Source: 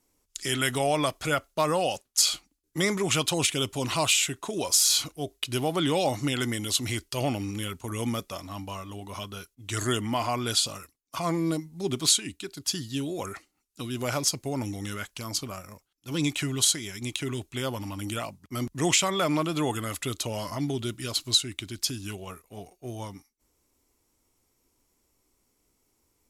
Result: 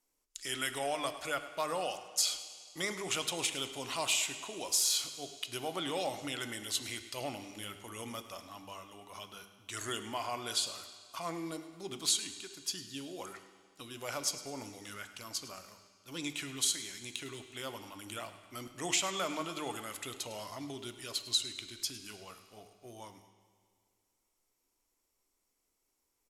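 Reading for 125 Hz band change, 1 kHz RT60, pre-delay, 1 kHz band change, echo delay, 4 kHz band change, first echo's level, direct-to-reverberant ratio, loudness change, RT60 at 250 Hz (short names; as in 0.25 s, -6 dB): -18.5 dB, 2.0 s, 10 ms, -8.5 dB, 0.105 s, -7.5 dB, -15.5 dB, 8.5 dB, -8.5 dB, 2.0 s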